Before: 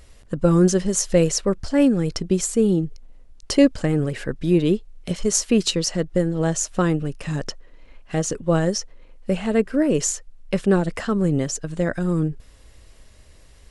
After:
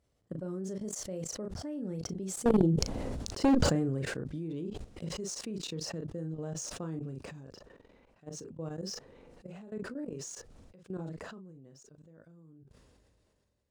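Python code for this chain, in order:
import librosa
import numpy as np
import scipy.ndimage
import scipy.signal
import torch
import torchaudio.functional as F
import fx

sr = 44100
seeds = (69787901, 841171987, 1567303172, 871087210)

y = scipy.signal.medfilt(x, 3)
y = fx.doppler_pass(y, sr, speed_mps=18, closest_m=11.0, pass_at_s=3.09)
y = scipy.signal.sosfilt(scipy.signal.butter(2, 95.0, 'highpass', fs=sr, output='sos'), y)
y = fx.high_shelf(y, sr, hz=8200.0, db=-11.5)
y = fx.doubler(y, sr, ms=37.0, db=-8.5)
y = fx.level_steps(y, sr, step_db=19)
y = fx.peak_eq(y, sr, hz=2300.0, db=-9.5, octaves=2.3)
y = fx.clip_asym(y, sr, top_db=-25.5, bottom_db=-17.5)
y = fx.sustainer(y, sr, db_per_s=25.0)
y = y * 10.0 ** (1.5 / 20.0)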